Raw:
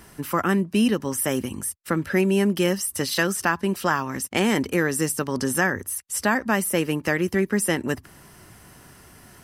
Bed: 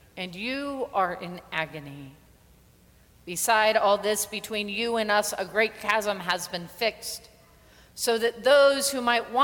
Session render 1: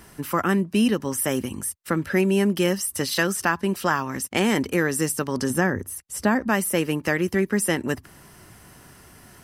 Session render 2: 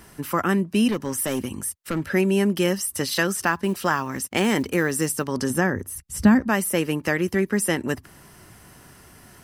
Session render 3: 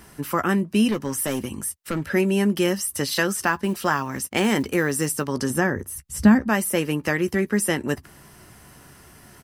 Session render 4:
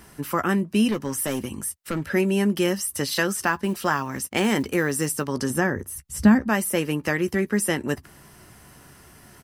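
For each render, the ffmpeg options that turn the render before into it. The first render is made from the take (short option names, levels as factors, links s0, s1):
-filter_complex "[0:a]asettb=1/sr,asplit=3[s0][s1][s2];[s0]atrim=end=5.504[s3];[s1]atrim=start=5.5:end=6.49,asetpts=PTS-STARTPTS,afade=t=in:d=0.004:c=qsin,afade=t=out:st=0.986:d=0.004:c=qsin,tiltshelf=f=710:g=5[s4];[s2]atrim=start=6.486[s5];[s3][s4]acrossfade=d=0.004:c1=hsin:c2=qsin[s6];[s6][s5]acrossfade=d=0.004:c1=qsin:c2=hsin"
-filter_complex "[0:a]asettb=1/sr,asplit=3[s0][s1][s2];[s0]atrim=end=0.884[s3];[s1]atrim=start=0.88:end=2.1,asetpts=PTS-STARTPTS,afade=t=in:d=0.004:c=qsin,afade=t=out:st=1.216:d=0.004:c=qsin,asoftclip=type=hard:threshold=0.106[s4];[s2]atrim=start=2.096[s5];[s3][s4]acrossfade=d=0.004:c1=hsin:c2=qsin[s6];[s6][s5]acrossfade=d=0.004:c1=qsin:c2=hsin,asettb=1/sr,asplit=3[s7][s8][s9];[s7]atrim=end=3.414[s10];[s8]atrim=start=3.41:end=5.23,asetpts=PTS-STARTPTS,afade=t=in:d=0.004:c=qsin,afade=t=out:st=1.816:d=0.004:c=qsin,acrusher=bits=8:mode=log:mix=0:aa=0.000001[s11];[s9]atrim=start=5.226[s12];[s10][s11]acrossfade=d=0.004:c1=hsin:c2=qsin[s13];[s13][s12]acrossfade=d=0.004:c1=qsin:c2=hsin,asplit=3[s14][s15][s16];[s14]afade=t=out:st=5.94:d=0.02[s17];[s15]asubboost=boost=6.5:cutoff=190,afade=t=in:st=5.94:d=0.02,afade=t=out:st=6.4:d=0.02[s18];[s16]afade=t=in:st=6.4:d=0.02[s19];[s17][s18][s19]amix=inputs=3:normalize=0"
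-filter_complex "[0:a]asplit=2[s0][s1];[s1]adelay=14,volume=0.237[s2];[s0][s2]amix=inputs=2:normalize=0"
-af "volume=0.891"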